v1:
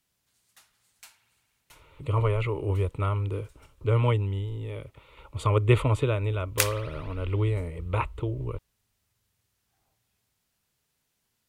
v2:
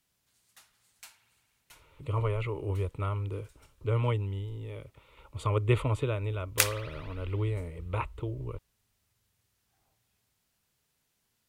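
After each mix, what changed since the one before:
speech -5.0 dB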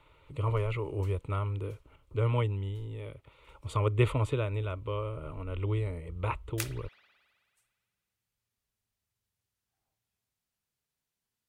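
speech: entry -1.70 s; background -11.5 dB

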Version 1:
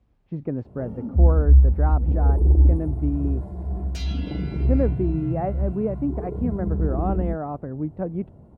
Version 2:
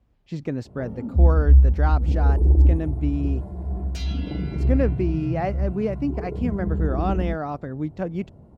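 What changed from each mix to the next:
speech: remove LPF 1000 Hz 12 dB/oct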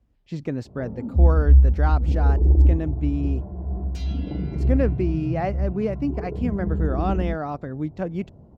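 first sound: add LPF 1200 Hz 12 dB/oct; second sound -6.0 dB

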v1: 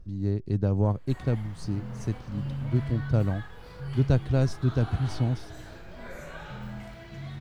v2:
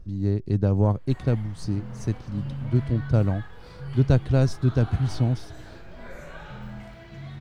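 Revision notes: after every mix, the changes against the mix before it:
speech +3.5 dB; background: add high shelf 6500 Hz -5.5 dB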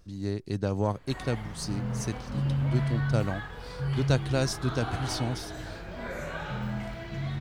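speech: add tilt +3 dB/oct; background +6.0 dB

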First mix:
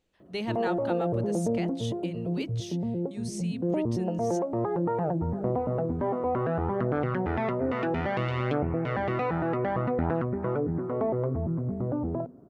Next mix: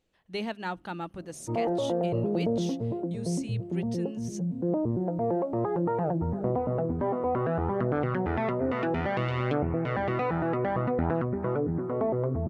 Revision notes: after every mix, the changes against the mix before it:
background: entry +1.00 s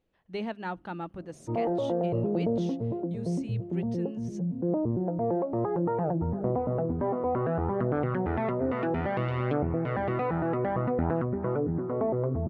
master: add LPF 1800 Hz 6 dB/oct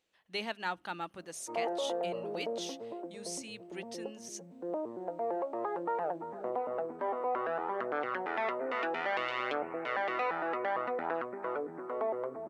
background: add HPF 370 Hz 12 dB/oct; master: add tilt +4.5 dB/oct

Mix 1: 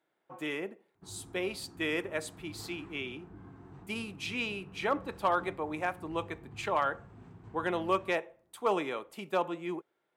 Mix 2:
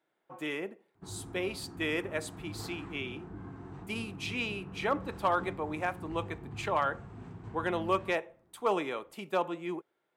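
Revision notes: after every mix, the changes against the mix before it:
background +6.0 dB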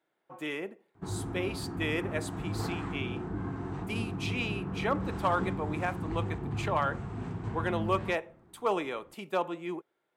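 background +9.0 dB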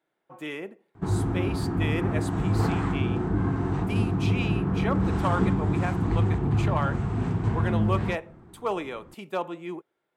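background +8.0 dB; master: add low shelf 180 Hz +4.5 dB

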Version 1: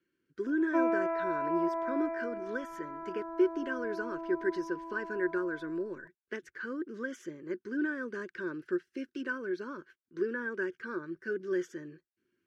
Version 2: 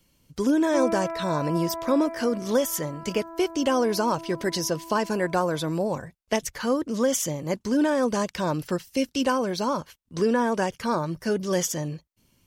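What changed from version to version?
speech: remove double band-pass 750 Hz, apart 2.1 oct; background: remove air absorption 100 m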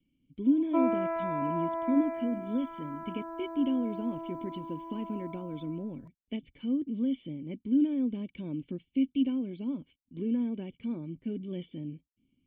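speech: add vocal tract filter i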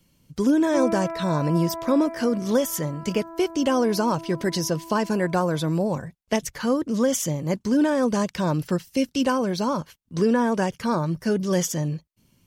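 speech: remove vocal tract filter i; master: add bell 160 Hz +6 dB 1.4 oct

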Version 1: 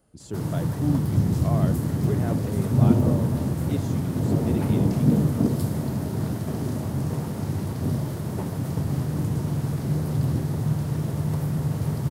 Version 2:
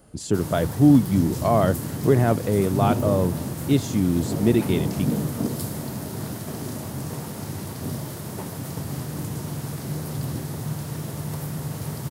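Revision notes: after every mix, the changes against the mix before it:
speech +12.0 dB; background: add tilt +2 dB/oct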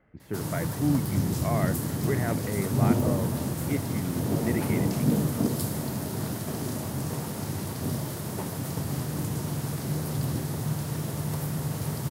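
speech: add ladder low-pass 2200 Hz, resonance 70%

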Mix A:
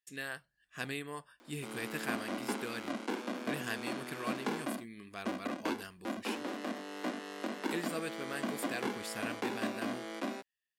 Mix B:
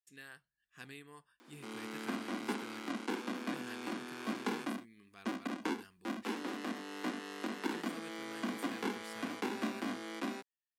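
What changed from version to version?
speech -11.0 dB; master: add bell 600 Hz -9.5 dB 0.39 oct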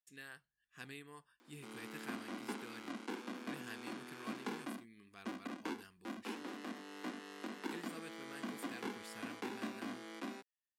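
background -6.0 dB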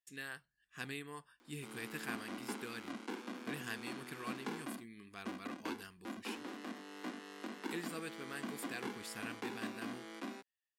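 speech +6.5 dB

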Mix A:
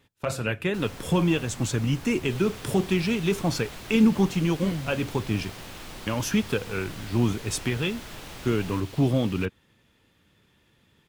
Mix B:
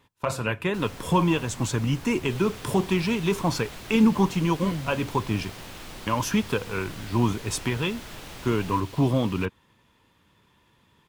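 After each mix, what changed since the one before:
speech: add bell 1000 Hz +12.5 dB 0.33 oct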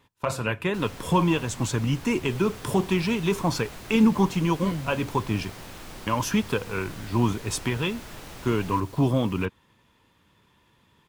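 second sound: add bell 3100 Hz -9 dB 1.6 oct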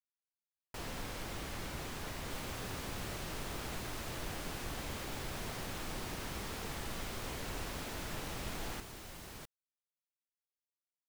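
speech: muted

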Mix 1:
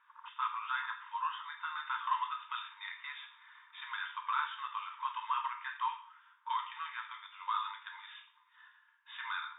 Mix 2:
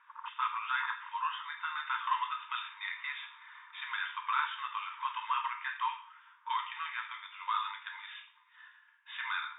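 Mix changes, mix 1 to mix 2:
speech: add bell 2300 Hz +7 dB 1.1 oct; background +7.5 dB

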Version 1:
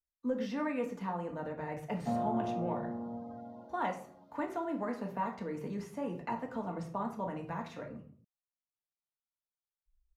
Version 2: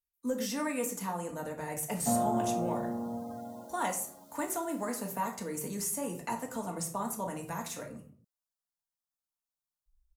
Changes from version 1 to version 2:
background +3.5 dB; master: remove air absorption 310 m

